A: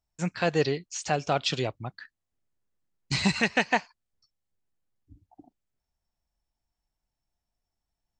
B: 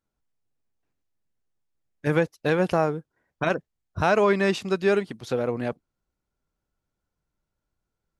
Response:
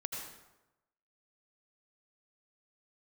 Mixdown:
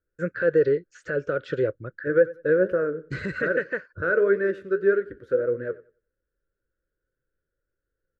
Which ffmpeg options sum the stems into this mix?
-filter_complex "[0:a]alimiter=limit=0.141:level=0:latency=1:release=31,volume=0.944[s0];[1:a]flanger=delay=7.5:depth=6:regen=61:speed=1.8:shape=triangular,volume=0.631,asplit=2[s1][s2];[s2]volume=0.112,aecho=0:1:92|184|276|368:1|0.22|0.0484|0.0106[s3];[s0][s1][s3]amix=inputs=3:normalize=0,firequalizer=gain_entry='entry(120,0);entry(230,-4);entry(320,6);entry(530,14);entry(760,-27);entry(1500,13);entry(2300,-12);entry(5200,-22);entry(9200,-20)':delay=0.05:min_phase=1"

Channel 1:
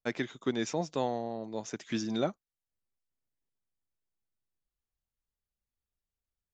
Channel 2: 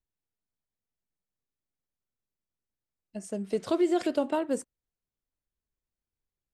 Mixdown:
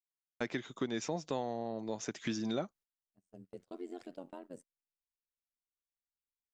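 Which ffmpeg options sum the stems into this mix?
-filter_complex "[0:a]adelay=350,volume=1.33[s0];[1:a]lowshelf=f=490:g=3.5,tremolo=f=89:d=0.919,volume=0.126[s1];[s0][s1]amix=inputs=2:normalize=0,agate=range=0.0708:threshold=0.00251:ratio=16:detection=peak,acompressor=threshold=0.0178:ratio=2.5"

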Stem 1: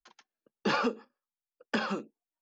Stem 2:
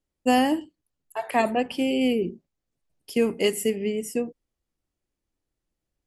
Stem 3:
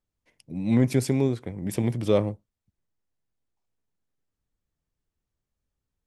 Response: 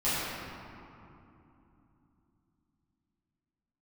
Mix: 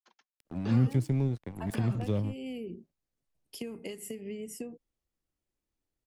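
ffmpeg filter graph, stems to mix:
-filter_complex "[0:a]agate=range=0.0224:threshold=0.00224:ratio=3:detection=peak,volume=0.668[s0];[1:a]acompressor=threshold=0.0447:ratio=6,adelay=450,volume=0.596[s1];[2:a]aeval=exprs='sgn(val(0))*max(abs(val(0))-0.0133,0)':c=same,volume=1.19[s2];[s0][s1][s2]amix=inputs=3:normalize=0,acrossover=split=190[s3][s4];[s4]acompressor=threshold=0.01:ratio=3[s5];[s3][s5]amix=inputs=2:normalize=0"

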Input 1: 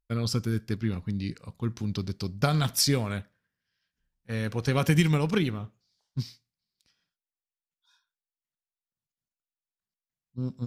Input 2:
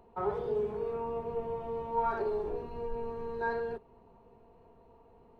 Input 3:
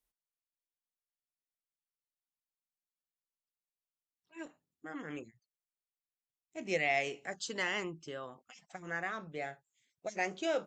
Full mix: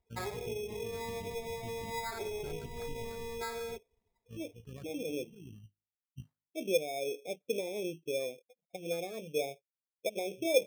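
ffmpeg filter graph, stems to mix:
-filter_complex "[0:a]bandreject=f=50.12:t=h:w=4,bandreject=f=100.24:t=h:w=4,bandreject=f=150.36:t=h:w=4,bandreject=f=200.48:t=h:w=4,bandreject=f=250.6:t=h:w=4,bandreject=f=300.72:t=h:w=4,bandreject=f=350.84:t=h:w=4,alimiter=limit=0.0944:level=0:latency=1:release=46,tremolo=f=55:d=0.667,volume=0.2[s0];[1:a]highshelf=f=3100:g=11,volume=0.75[s1];[2:a]alimiter=level_in=1.41:limit=0.0631:level=0:latency=1:release=393,volume=0.708,lowpass=f=500:t=q:w=4.7,volume=1.06,asplit=2[s2][s3];[s3]apad=whole_len=470416[s4];[s0][s4]sidechaincompress=threshold=0.00251:ratio=3:attack=40:release=257[s5];[s5][s1]amix=inputs=2:normalize=0,equalizer=f=83:w=1.7:g=4.5,acompressor=threshold=0.0178:ratio=6,volume=1[s6];[s2][s6]amix=inputs=2:normalize=0,afftdn=nr=25:nf=-44,acrusher=samples=15:mix=1:aa=0.000001"

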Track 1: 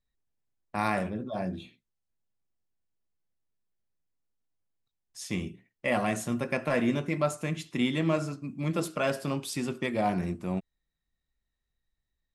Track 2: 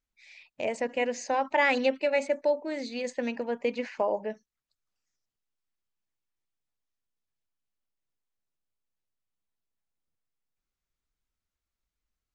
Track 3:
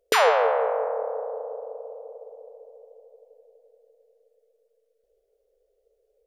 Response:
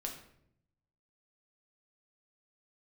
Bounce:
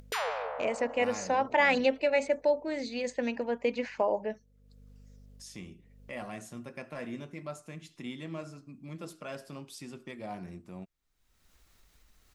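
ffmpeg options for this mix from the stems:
-filter_complex "[0:a]equalizer=f=5400:t=o:w=0.77:g=3,adelay=250,volume=0.224[s0];[1:a]volume=0.944[s1];[2:a]lowshelf=f=490:g=-10,aeval=exprs='val(0)+0.00224*(sin(2*PI*50*n/s)+sin(2*PI*2*50*n/s)/2+sin(2*PI*3*50*n/s)/3+sin(2*PI*4*50*n/s)/4+sin(2*PI*5*50*n/s)/5)':c=same,volume=0.266[s2];[s0][s1][s2]amix=inputs=3:normalize=0,acompressor=mode=upward:threshold=0.00794:ratio=2.5"

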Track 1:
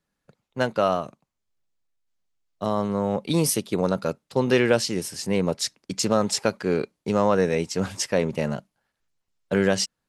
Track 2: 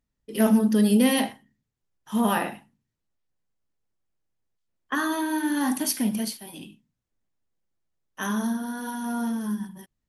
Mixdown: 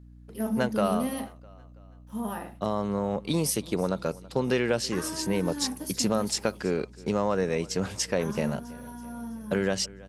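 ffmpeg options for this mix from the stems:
-filter_complex "[0:a]acompressor=threshold=0.0501:ratio=2,volume=1,asplit=2[s0][s1];[s1]volume=0.0841[s2];[1:a]equalizer=f=2900:w=0.74:g=-8,aeval=exprs='sgn(val(0))*max(abs(val(0))-0.00211,0)':c=same,volume=0.335[s3];[s2]aecho=0:1:328|656|984|1312|1640|1968|2296:1|0.51|0.26|0.133|0.0677|0.0345|0.0176[s4];[s0][s3][s4]amix=inputs=3:normalize=0,aeval=exprs='val(0)+0.00398*(sin(2*PI*60*n/s)+sin(2*PI*2*60*n/s)/2+sin(2*PI*3*60*n/s)/3+sin(2*PI*4*60*n/s)/4+sin(2*PI*5*60*n/s)/5)':c=same"

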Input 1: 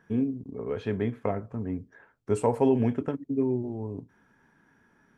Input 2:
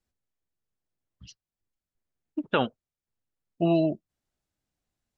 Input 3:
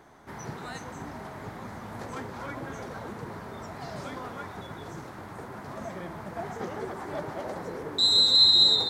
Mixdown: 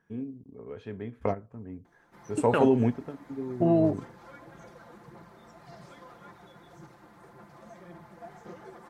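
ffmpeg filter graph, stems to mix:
-filter_complex "[0:a]volume=1.06[s0];[1:a]afwtdn=0.02,alimiter=limit=0.178:level=0:latency=1,volume=1.12,asplit=2[s1][s2];[2:a]aecho=1:1:5.8:0.7,aphaser=in_gain=1:out_gain=1:delay=4.2:decay=0.3:speed=1.8:type=sinusoidal,adelay=1850,volume=0.2[s3];[s2]apad=whole_len=228286[s4];[s0][s4]sidechaingate=range=0.316:threshold=0.00112:ratio=16:detection=peak[s5];[s5][s1][s3]amix=inputs=3:normalize=0"

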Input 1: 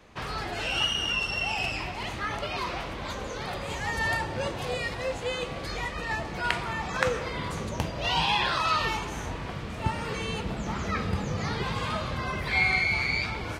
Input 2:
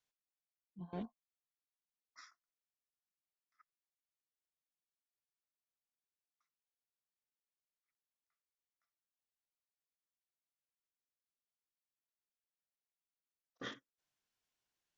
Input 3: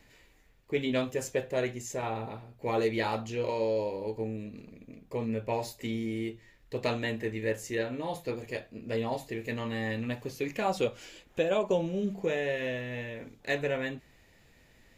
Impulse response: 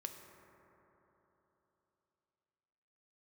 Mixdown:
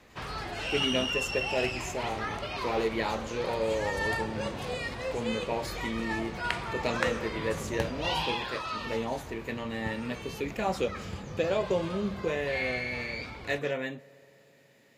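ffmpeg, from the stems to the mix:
-filter_complex "[0:a]volume=0.668,afade=t=out:st=8.08:d=0.37:silence=0.473151[s0];[1:a]volume=1[s1];[2:a]highpass=f=130:w=0.5412,highpass=f=130:w=1.3066,volume=0.794,asplit=2[s2][s3];[s3]volume=0.266[s4];[3:a]atrim=start_sample=2205[s5];[s4][s5]afir=irnorm=-1:irlink=0[s6];[s0][s1][s2][s6]amix=inputs=4:normalize=0"

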